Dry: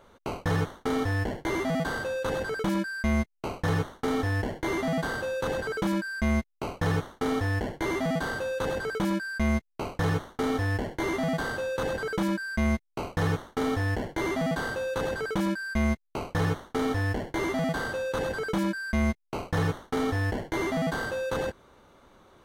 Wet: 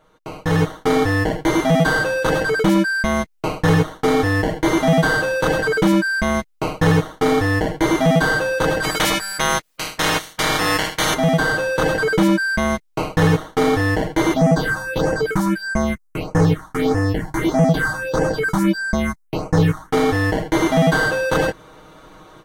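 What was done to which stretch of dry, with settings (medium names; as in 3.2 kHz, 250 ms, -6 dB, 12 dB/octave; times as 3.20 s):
8.82–11.13 s: spectral peaks clipped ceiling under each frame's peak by 27 dB
14.33–19.92 s: phase shifter stages 4, 1.6 Hz, lowest notch 440–3600 Hz
whole clip: comb 6.4 ms, depth 78%; level rider gain up to 14.5 dB; trim -3 dB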